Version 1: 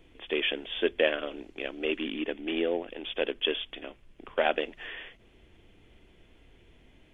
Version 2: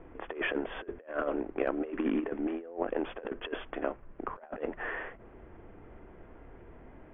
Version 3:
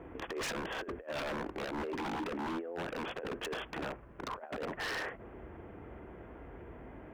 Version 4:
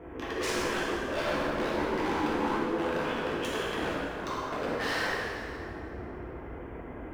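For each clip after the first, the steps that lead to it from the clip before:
low-pass filter 1,400 Hz 24 dB per octave; low-shelf EQ 490 Hz −9 dB; compressor whose output falls as the input rises −41 dBFS, ratio −0.5; level +8.5 dB
brickwall limiter −24.5 dBFS, peak gain reduction 9 dB; high-pass filter 44 Hz 24 dB per octave; wave folding −35.5 dBFS; level +3.5 dB
dense smooth reverb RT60 2.5 s, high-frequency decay 0.75×, DRR −7 dB

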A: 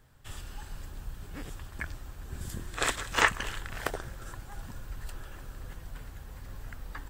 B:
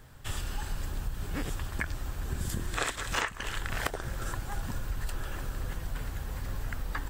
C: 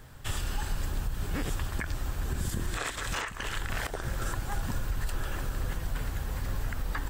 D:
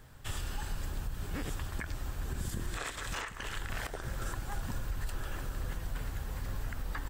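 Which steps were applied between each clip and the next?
downward compressor 16 to 1, threshold −36 dBFS, peak gain reduction 20 dB; level +8.5 dB
brickwall limiter −24.5 dBFS, peak gain reduction 11 dB; level +3 dB
slap from a distant wall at 17 metres, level −17 dB; level −5 dB

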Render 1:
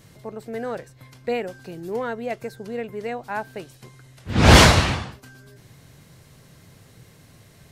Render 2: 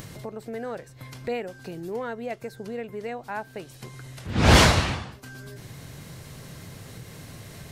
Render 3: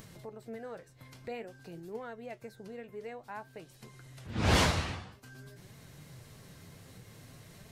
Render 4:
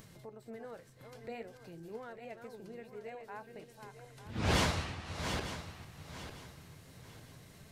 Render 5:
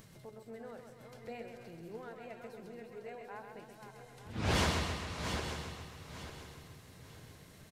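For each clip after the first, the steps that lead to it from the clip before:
upward compression, threshold −25 dBFS; level −4.5 dB
flanger 0.52 Hz, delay 4.3 ms, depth 8.5 ms, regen +63%; level −6 dB
feedback delay that plays each chunk backwards 450 ms, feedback 54%, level −7 dB; level −4 dB
repeating echo 132 ms, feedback 60%, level −6.5 dB; level −1.5 dB

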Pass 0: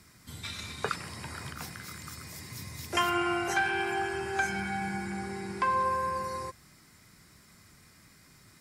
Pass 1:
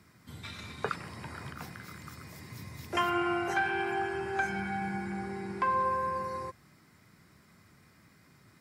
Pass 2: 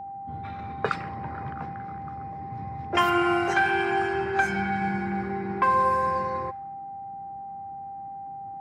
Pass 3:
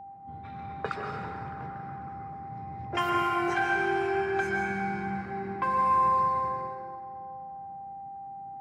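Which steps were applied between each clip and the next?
high-pass filter 81 Hz; parametric band 8,600 Hz −10.5 dB 2.5 octaves
low-pass that shuts in the quiet parts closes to 650 Hz, open at −26 dBFS; steady tone 790 Hz −42 dBFS; level +7 dB
dense smooth reverb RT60 2.3 s, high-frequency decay 0.65×, pre-delay 110 ms, DRR 1 dB; level −7 dB

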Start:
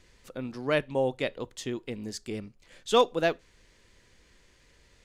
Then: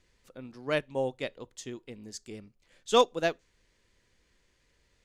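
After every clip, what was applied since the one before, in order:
dynamic equaliser 6,700 Hz, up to +7 dB, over −55 dBFS, Q 1.5
expander for the loud parts 1.5 to 1, over −35 dBFS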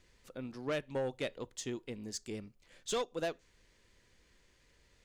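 downward compressor 5 to 1, threshold −30 dBFS, peak gain reduction 13 dB
soft clipping −30.5 dBFS, distortion −12 dB
level +2 dB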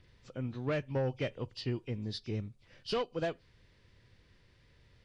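hearing-aid frequency compression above 2,200 Hz 1.5 to 1
parametric band 110 Hz +13 dB 1.1 octaves
level +1 dB

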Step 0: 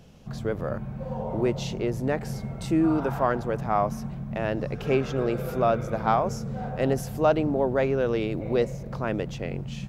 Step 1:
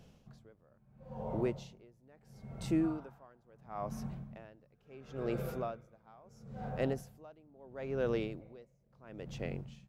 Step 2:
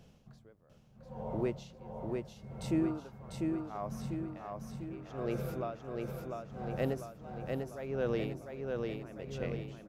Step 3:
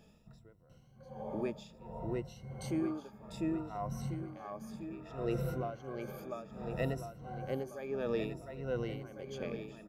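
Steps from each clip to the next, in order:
tremolo with a sine in dB 0.74 Hz, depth 30 dB; level −7 dB
repeating echo 697 ms, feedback 54%, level −3.5 dB
rippled gain that drifts along the octave scale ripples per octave 2, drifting +0.62 Hz, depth 15 dB; level −3 dB

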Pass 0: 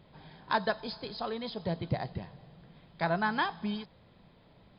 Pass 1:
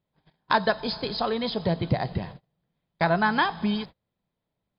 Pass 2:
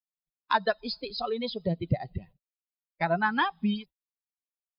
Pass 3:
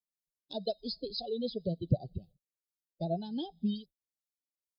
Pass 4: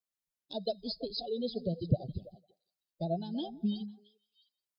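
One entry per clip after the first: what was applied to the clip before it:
noise gate −47 dBFS, range −34 dB; in parallel at +2 dB: downward compressor, threshold −36 dBFS, peak gain reduction 12.5 dB; on the sum: level +4 dB
spectral dynamics exaggerated over time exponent 2
two-band tremolo in antiphase 2 Hz, depth 50%, crossover 830 Hz; harmonic generator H 3 −43 dB, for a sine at −14 dBFS; inverse Chebyshev band-stop filter 960–2,400 Hz, stop band 40 dB
echo through a band-pass that steps 166 ms, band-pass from 210 Hz, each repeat 1.4 octaves, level −11 dB

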